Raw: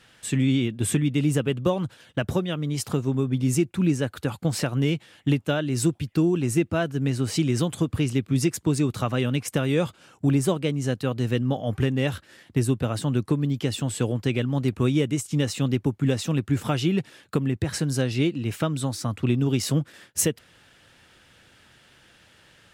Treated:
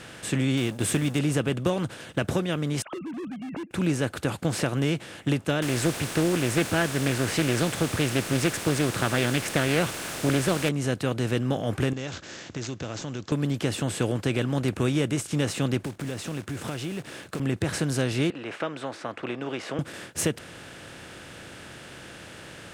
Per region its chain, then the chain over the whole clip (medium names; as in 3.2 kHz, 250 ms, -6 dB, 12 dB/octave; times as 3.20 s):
0.57–1.19 s: companding laws mixed up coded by A + treble shelf 4.8 kHz +8 dB
2.82–3.71 s: formants replaced by sine waves + compression 2.5:1, threshold -39 dBFS + hard clipper -34 dBFS
5.62–10.69 s: peaking EQ 1.9 kHz +10.5 dB 1.2 oct + word length cut 6-bit, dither triangular + loudspeaker Doppler distortion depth 0.46 ms
11.93–13.32 s: tone controls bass -1 dB, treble +13 dB + compression 2:1, threshold -45 dBFS + careless resampling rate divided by 3×, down none, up filtered
15.84–17.40 s: block-companded coder 5-bit + compression 2.5:1, threshold -38 dBFS
18.30–19.79 s: Butterworth band-pass 1.1 kHz, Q 0.57 + expander -50 dBFS
whole clip: spectral levelling over time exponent 0.6; treble shelf 12 kHz -9 dB; trim -5 dB